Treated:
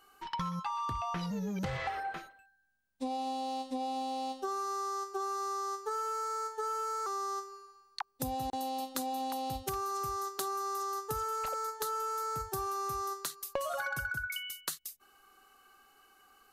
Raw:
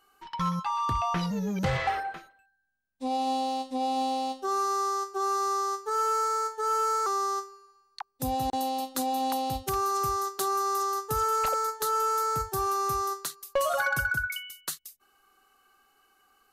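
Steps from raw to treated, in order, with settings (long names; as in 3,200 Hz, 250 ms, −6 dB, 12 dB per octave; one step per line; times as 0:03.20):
downward compressor 12 to 1, threshold −35 dBFS, peak gain reduction 13 dB
level +2.5 dB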